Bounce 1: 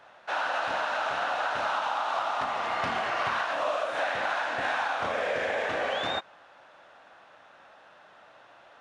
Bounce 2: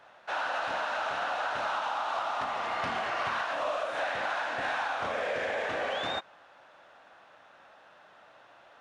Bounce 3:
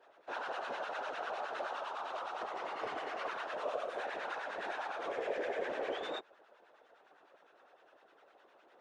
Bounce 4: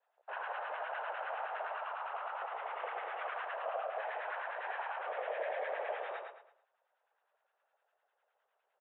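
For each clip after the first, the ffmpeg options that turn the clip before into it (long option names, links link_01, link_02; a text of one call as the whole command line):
ffmpeg -i in.wav -af "asoftclip=type=tanh:threshold=-18.5dB,volume=-2dB" out.wav
ffmpeg -i in.wav -filter_complex "[0:a]highpass=frequency=400:width_type=q:width=4.9,afftfilt=real='hypot(re,im)*cos(2*PI*random(0))':imag='hypot(re,im)*sin(2*PI*random(1))':win_size=512:overlap=0.75,acrossover=split=990[link_01][link_02];[link_01]aeval=exprs='val(0)*(1-0.7/2+0.7/2*cos(2*PI*9.8*n/s))':channel_layout=same[link_03];[link_02]aeval=exprs='val(0)*(1-0.7/2-0.7/2*cos(2*PI*9.8*n/s))':channel_layout=same[link_04];[link_03][link_04]amix=inputs=2:normalize=0,volume=-1dB" out.wav
ffmpeg -i in.wav -filter_complex "[0:a]afwtdn=0.00447,asplit=2[link_01][link_02];[link_02]aecho=0:1:110|220|330|440:0.596|0.203|0.0689|0.0234[link_03];[link_01][link_03]amix=inputs=2:normalize=0,highpass=frequency=440:width_type=q:width=0.5412,highpass=frequency=440:width_type=q:width=1.307,lowpass=frequency=3500:width_type=q:width=0.5176,lowpass=frequency=3500:width_type=q:width=0.7071,lowpass=frequency=3500:width_type=q:width=1.932,afreqshift=56,volume=-1dB" out.wav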